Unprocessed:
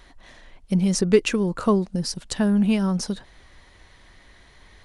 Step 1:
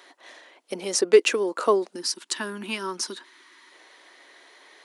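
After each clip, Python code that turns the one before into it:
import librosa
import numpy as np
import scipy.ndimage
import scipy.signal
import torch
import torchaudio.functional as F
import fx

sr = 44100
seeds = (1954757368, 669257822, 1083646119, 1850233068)

y = fx.spec_box(x, sr, start_s=1.93, length_s=1.79, low_hz=400.0, high_hz=870.0, gain_db=-13)
y = scipy.signal.sosfilt(scipy.signal.butter(6, 310.0, 'highpass', fs=sr, output='sos'), y)
y = y * 10.0 ** (2.5 / 20.0)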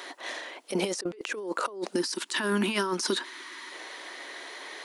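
y = fx.over_compress(x, sr, threshold_db=-35.0, ratio=-1.0)
y = y * 10.0 ** (2.5 / 20.0)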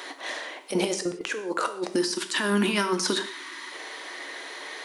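y = fx.rev_gated(x, sr, seeds[0], gate_ms=200, shape='falling', drr_db=7.0)
y = y * 10.0 ** (2.5 / 20.0)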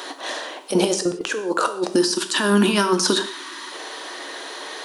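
y = fx.peak_eq(x, sr, hz=2100.0, db=-10.5, octaves=0.36)
y = y * 10.0 ** (7.0 / 20.0)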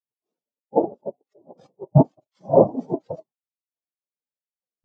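y = fx.cvsd(x, sr, bps=64000)
y = fx.noise_vocoder(y, sr, seeds[1], bands=2)
y = fx.spectral_expand(y, sr, expansion=4.0)
y = y * 10.0 ** (2.5 / 20.0)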